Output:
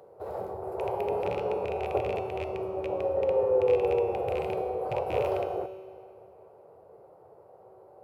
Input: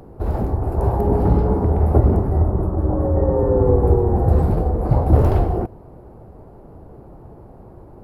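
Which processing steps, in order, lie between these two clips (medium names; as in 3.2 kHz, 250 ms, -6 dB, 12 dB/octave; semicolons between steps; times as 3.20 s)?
rattle on loud lows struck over -12 dBFS, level -17 dBFS; high-pass 90 Hz 24 dB/octave; resonant low shelf 350 Hz -11 dB, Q 3; band-stop 1.7 kHz, Q 17; feedback comb 190 Hz, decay 1.4 s, mix 80%; on a send: reverberation RT60 2.7 s, pre-delay 39 ms, DRR 15.5 dB; on the sum: trim +2.5 dB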